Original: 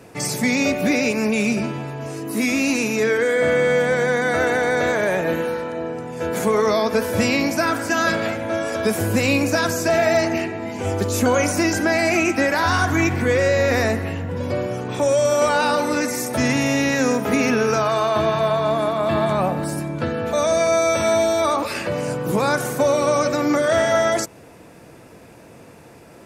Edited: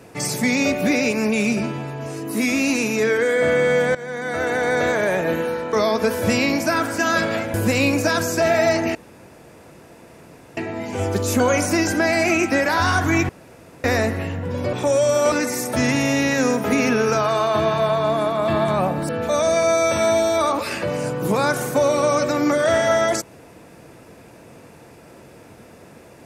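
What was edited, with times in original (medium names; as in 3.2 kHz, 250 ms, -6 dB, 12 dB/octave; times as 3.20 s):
3.95–4.73 s: fade in, from -16.5 dB
5.73–6.64 s: delete
8.45–9.02 s: delete
10.43 s: insert room tone 1.62 s
13.15–13.70 s: room tone
14.59–14.89 s: delete
15.48–15.93 s: delete
19.70–20.13 s: delete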